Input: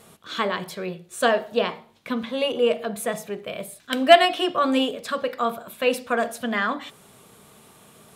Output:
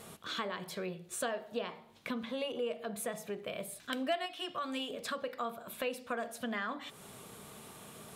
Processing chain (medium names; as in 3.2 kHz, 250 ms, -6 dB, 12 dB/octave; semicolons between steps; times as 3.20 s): 4.26–4.90 s: peaking EQ 420 Hz -9 dB 2.7 oct; compression 3:1, threshold -39 dBFS, peak gain reduction 23 dB